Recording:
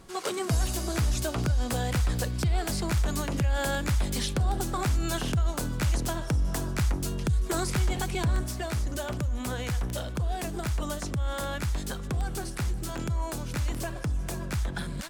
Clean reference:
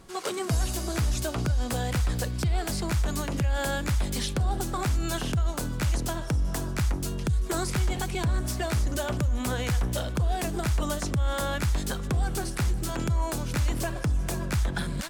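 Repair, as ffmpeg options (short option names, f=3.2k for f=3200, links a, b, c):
-af "adeclick=t=4,asetnsamples=n=441:p=0,asendcmd='8.44 volume volume 3.5dB',volume=0dB"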